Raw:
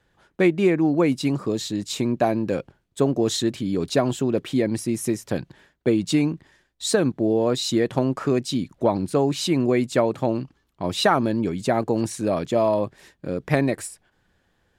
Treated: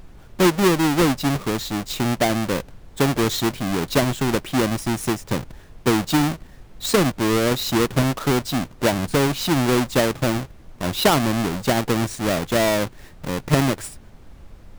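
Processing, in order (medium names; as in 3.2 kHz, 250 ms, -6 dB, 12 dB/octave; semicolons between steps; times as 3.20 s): square wave that keeps the level; added noise brown -39 dBFS; trim -2.5 dB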